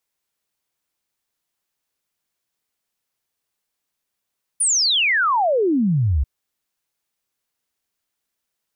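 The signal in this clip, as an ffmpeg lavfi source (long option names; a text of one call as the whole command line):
ffmpeg -f lavfi -i "aevalsrc='0.178*clip(min(t,1.64-t)/0.01,0,1)*sin(2*PI*10000*1.64/log(62/10000)*(exp(log(62/10000)*t/1.64)-1))':duration=1.64:sample_rate=44100" out.wav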